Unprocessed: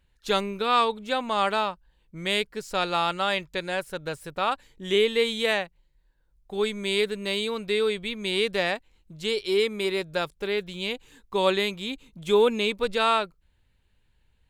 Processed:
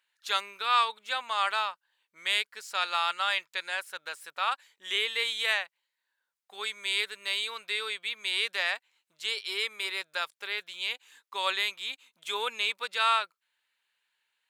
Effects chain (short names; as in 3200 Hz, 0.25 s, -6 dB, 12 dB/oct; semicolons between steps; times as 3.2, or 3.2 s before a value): Chebyshev high-pass 1300 Hz, order 2